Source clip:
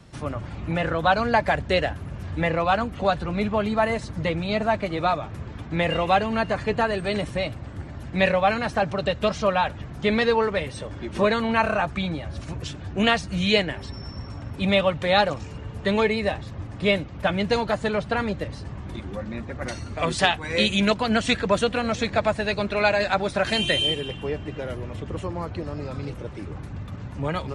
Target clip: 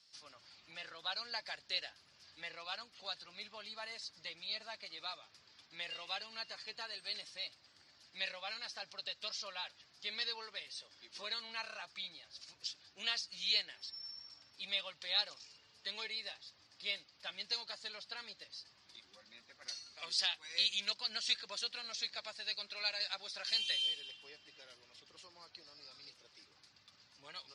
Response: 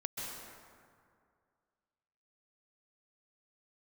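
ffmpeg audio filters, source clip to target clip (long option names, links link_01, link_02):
-af "bandpass=frequency=4800:width_type=q:width=5.7:csg=0,volume=3dB"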